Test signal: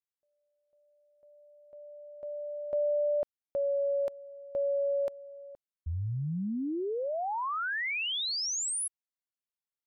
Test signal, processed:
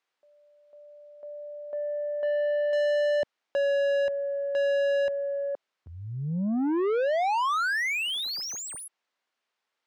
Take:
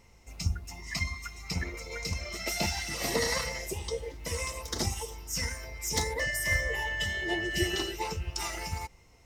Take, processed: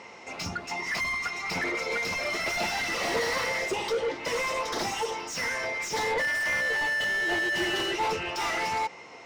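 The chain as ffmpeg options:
ffmpeg -i in.wav -filter_complex "[0:a]highpass=190,lowpass=6100,asplit=2[link_01][link_02];[link_02]highpass=frequency=720:poles=1,volume=31dB,asoftclip=type=tanh:threshold=-16dB[link_03];[link_01][link_03]amix=inputs=2:normalize=0,lowpass=frequency=1800:poles=1,volume=-6dB,volume=-2.5dB" out.wav

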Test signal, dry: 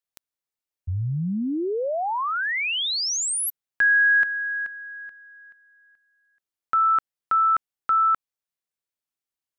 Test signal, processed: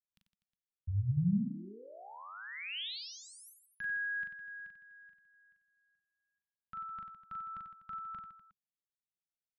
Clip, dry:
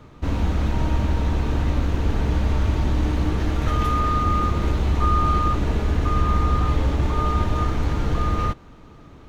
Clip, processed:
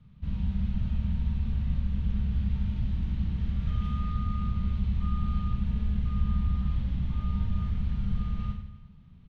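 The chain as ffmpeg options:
ffmpeg -i in.wav -af "firequalizer=gain_entry='entry(120,0);entry(200,5);entry(290,-21);entry(3100,-7);entry(7000,-23)':delay=0.05:min_phase=1,aecho=1:1:40|92|159.6|247.5|361.7:0.631|0.398|0.251|0.158|0.1,volume=-8.5dB" out.wav

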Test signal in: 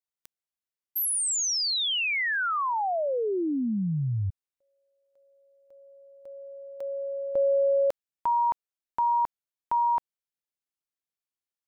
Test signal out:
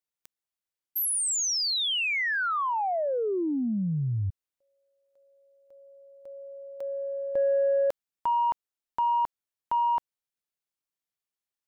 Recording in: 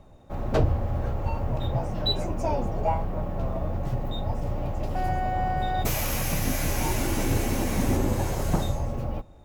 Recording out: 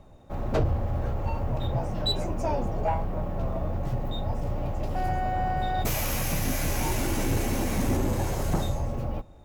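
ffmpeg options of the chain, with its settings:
ffmpeg -i in.wav -af "asoftclip=type=tanh:threshold=-16.5dB" out.wav

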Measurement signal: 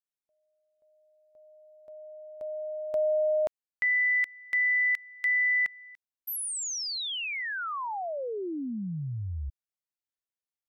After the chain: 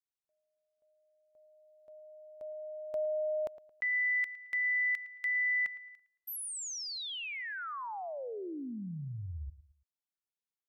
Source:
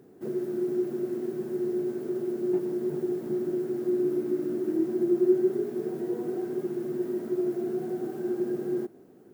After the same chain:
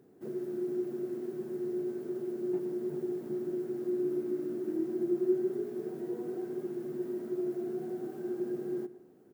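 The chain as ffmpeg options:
ffmpeg -i in.wav -filter_complex "[0:a]asplit=2[link_01][link_02];[link_02]adelay=111,lowpass=frequency=2900:poles=1,volume=-16dB,asplit=2[link_03][link_04];[link_04]adelay=111,lowpass=frequency=2900:poles=1,volume=0.37,asplit=2[link_05][link_06];[link_06]adelay=111,lowpass=frequency=2900:poles=1,volume=0.37[link_07];[link_01][link_03][link_05][link_07]amix=inputs=4:normalize=0,volume=-6.5dB" out.wav

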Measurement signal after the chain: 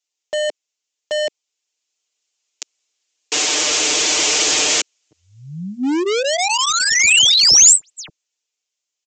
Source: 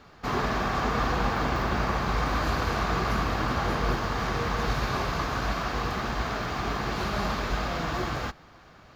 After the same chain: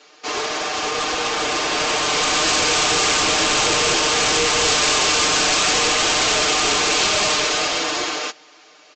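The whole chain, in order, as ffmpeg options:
ffmpeg -i in.wav -af "highpass=frequency=350:width=0.5412,highpass=frequency=350:width=1.3066,aeval=exprs='0.237*(cos(1*acos(clip(val(0)/0.237,-1,1)))-cos(1*PI/2))+0.00944*(cos(7*acos(clip(val(0)/0.237,-1,1)))-cos(7*PI/2))':channel_layout=same,aecho=1:1:6.6:0.94,dynaudnorm=framelen=240:gausssize=17:maxgain=15dB,aresample=16000,volume=22dB,asoftclip=hard,volume=-22dB,aresample=44100,aexciter=amount=2.7:drive=2.5:freq=2300,equalizer=frequency=1100:width=0.52:gain=-6.5,volume=7.5dB" out.wav

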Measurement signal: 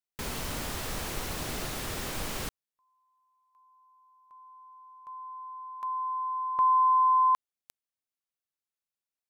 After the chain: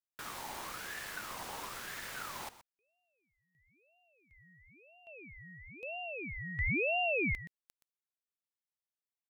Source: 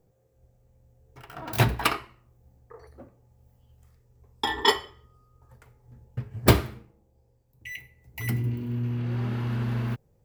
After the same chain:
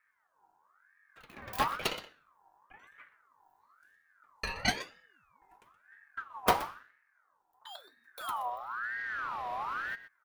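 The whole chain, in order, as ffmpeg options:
ffmpeg -i in.wav -af "aecho=1:1:123:0.178,aeval=exprs='val(0)*sin(2*PI*1300*n/s+1300*0.35/1*sin(2*PI*1*n/s))':channel_layout=same,volume=-6dB" out.wav

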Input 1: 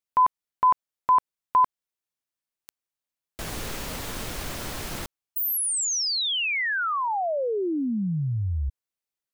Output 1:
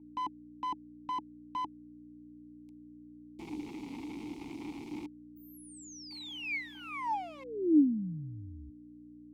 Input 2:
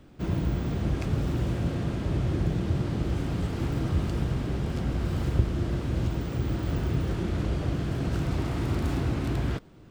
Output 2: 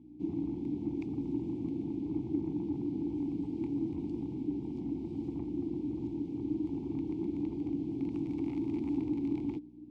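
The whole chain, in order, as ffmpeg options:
ffmpeg -i in.wav -filter_complex "[0:a]acrossover=split=430|590|3600[link_01][link_02][link_03][link_04];[link_03]acrusher=bits=3:dc=4:mix=0:aa=0.000001[link_05];[link_01][link_02][link_05][link_04]amix=inputs=4:normalize=0,aeval=exprs='val(0)+0.00708*(sin(2*PI*60*n/s)+sin(2*PI*2*60*n/s)/2+sin(2*PI*3*60*n/s)/3+sin(2*PI*4*60*n/s)/4+sin(2*PI*5*60*n/s)/5)':channel_layout=same,volume=21.5dB,asoftclip=hard,volume=-21.5dB,asplit=3[link_06][link_07][link_08];[link_06]bandpass=frequency=300:width_type=q:width=8,volume=0dB[link_09];[link_07]bandpass=frequency=870:width_type=q:width=8,volume=-6dB[link_10];[link_08]bandpass=frequency=2240:width_type=q:width=8,volume=-9dB[link_11];[link_09][link_10][link_11]amix=inputs=3:normalize=0,volume=6.5dB" out.wav

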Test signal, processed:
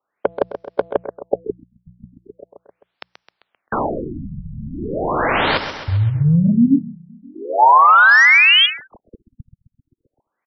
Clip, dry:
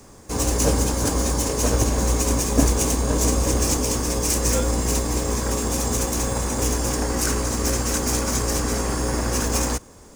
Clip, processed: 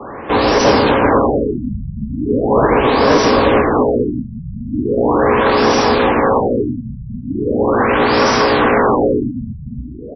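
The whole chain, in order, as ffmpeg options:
ffmpeg -i in.wav -filter_complex "[0:a]bandreject=frequency=60:width_type=h:width=6,bandreject=frequency=120:width_type=h:width=6,bandreject=frequency=180:width_type=h:width=6,afftfilt=real='re*lt(hypot(re,im),0.891)':imag='im*lt(hypot(re,im),0.891)':win_size=1024:overlap=0.75,acrossover=split=120|890|5200[link_01][link_02][link_03][link_04];[link_02]crystalizer=i=3.5:c=0[link_05];[link_01][link_05][link_03][link_04]amix=inputs=4:normalize=0,asplit=2[link_06][link_07];[link_07]highpass=frequency=720:poles=1,volume=25dB,asoftclip=type=tanh:threshold=-7dB[link_08];[link_06][link_08]amix=inputs=2:normalize=0,lowpass=frequency=2200:poles=1,volume=-6dB,aecho=1:1:131|262|393|524|655|786:0.299|0.167|0.0936|0.0524|0.0294|0.0164,afftfilt=real='re*lt(b*sr/1024,210*pow(6000/210,0.5+0.5*sin(2*PI*0.39*pts/sr)))':imag='im*lt(b*sr/1024,210*pow(6000/210,0.5+0.5*sin(2*PI*0.39*pts/sr)))':win_size=1024:overlap=0.75,volume=6dB" out.wav

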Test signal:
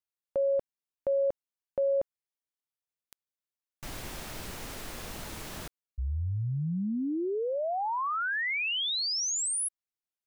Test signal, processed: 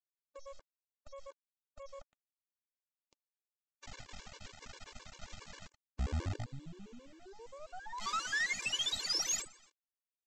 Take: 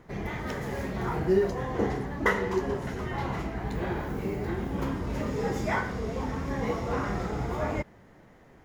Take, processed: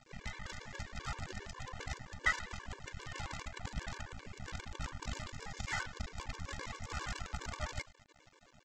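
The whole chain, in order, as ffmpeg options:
ffmpeg -i in.wav -filter_complex "[0:a]equalizer=frequency=330:width_type=o:width=0.41:gain=-14,acrossover=split=110|1000[link_01][link_02][link_03];[link_02]acompressor=threshold=-42dB:ratio=20:attack=0.14:release=468:knee=6:detection=rms[link_04];[link_01][link_04][link_03]amix=inputs=3:normalize=0,asplit=5[link_05][link_06][link_07][link_08][link_09];[link_06]adelay=117,afreqshift=-42,volume=-21dB[link_10];[link_07]adelay=234,afreqshift=-84,volume=-26.4dB[link_11];[link_08]adelay=351,afreqshift=-126,volume=-31.7dB[link_12];[link_09]adelay=468,afreqshift=-168,volume=-37.1dB[link_13];[link_05][link_10][link_11][link_12][link_13]amix=inputs=5:normalize=0,aresample=16000,acrusher=bits=6:dc=4:mix=0:aa=0.000001,aresample=44100,aeval=exprs='0.2*(cos(1*acos(clip(val(0)/0.2,-1,1)))-cos(1*PI/2))+0.0447*(cos(2*acos(clip(val(0)/0.2,-1,1)))-cos(2*PI/2))':channel_layout=same,afftfilt=real='re*gt(sin(2*PI*7.5*pts/sr)*(1-2*mod(floor(b*sr/1024/300),2)),0)':imag='im*gt(sin(2*PI*7.5*pts/sr)*(1-2*mod(floor(b*sr/1024/300),2)),0)':win_size=1024:overlap=0.75,volume=-2dB" out.wav

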